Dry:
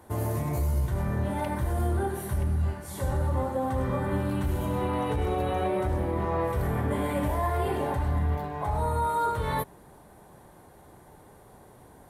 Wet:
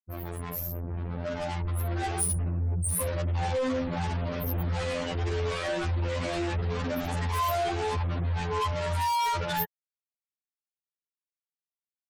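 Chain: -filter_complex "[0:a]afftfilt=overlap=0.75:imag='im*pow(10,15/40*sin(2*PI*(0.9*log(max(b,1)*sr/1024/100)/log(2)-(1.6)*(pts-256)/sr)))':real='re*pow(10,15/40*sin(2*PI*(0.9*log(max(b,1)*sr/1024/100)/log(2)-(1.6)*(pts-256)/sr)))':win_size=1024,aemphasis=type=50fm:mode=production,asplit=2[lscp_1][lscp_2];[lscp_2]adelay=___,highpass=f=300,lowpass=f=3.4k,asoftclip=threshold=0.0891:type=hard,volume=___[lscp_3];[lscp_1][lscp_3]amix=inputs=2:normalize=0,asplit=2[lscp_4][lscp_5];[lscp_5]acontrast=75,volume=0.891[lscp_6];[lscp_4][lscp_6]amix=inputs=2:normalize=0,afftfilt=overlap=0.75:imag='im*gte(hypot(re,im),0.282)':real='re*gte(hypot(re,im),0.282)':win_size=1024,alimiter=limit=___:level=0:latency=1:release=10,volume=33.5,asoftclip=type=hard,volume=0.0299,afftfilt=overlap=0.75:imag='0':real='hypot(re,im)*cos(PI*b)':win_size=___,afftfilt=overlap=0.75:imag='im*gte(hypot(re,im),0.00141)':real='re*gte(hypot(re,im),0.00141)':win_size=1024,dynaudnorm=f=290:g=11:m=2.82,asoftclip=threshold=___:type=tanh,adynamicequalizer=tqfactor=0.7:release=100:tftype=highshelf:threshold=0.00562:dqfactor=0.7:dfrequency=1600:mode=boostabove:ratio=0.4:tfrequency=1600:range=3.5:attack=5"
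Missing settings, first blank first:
110, 0.0794, 0.266, 2048, 0.0841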